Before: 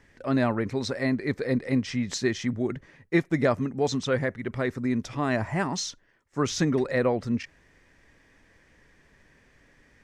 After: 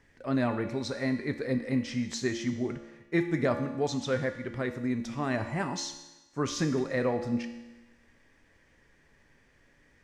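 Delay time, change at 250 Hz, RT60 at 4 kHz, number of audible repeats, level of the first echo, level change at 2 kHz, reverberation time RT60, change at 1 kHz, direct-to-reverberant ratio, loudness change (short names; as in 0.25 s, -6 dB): none, -3.5 dB, 1.1 s, none, none, -4.0 dB, 1.1 s, -4.0 dB, 6.0 dB, -4.0 dB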